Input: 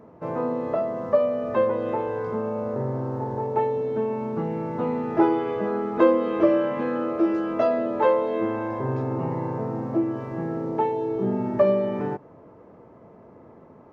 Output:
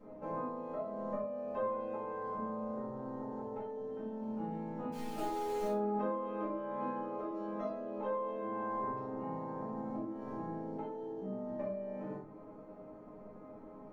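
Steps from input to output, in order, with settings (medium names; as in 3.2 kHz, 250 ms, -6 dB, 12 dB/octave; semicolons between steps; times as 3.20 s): compression 12:1, threshold -33 dBFS, peak gain reduction 20.5 dB; 4.92–5.68 s: companded quantiser 4-bit; chord resonator G#3 major, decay 0.22 s; simulated room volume 250 m³, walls furnished, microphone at 6.9 m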